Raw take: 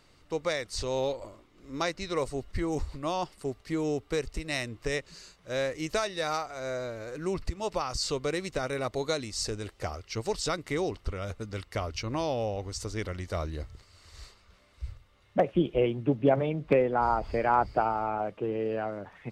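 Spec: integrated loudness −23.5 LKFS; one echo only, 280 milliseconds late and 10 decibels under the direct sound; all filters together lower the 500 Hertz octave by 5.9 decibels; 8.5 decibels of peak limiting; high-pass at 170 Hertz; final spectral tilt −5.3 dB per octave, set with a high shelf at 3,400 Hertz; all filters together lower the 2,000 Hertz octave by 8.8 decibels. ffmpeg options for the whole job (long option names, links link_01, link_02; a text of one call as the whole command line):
ffmpeg -i in.wav -af "highpass=170,equalizer=frequency=500:width_type=o:gain=-6.5,equalizer=frequency=2000:width_type=o:gain=-8.5,highshelf=frequency=3400:gain=-9,alimiter=limit=-24dB:level=0:latency=1,aecho=1:1:280:0.316,volume=14dB" out.wav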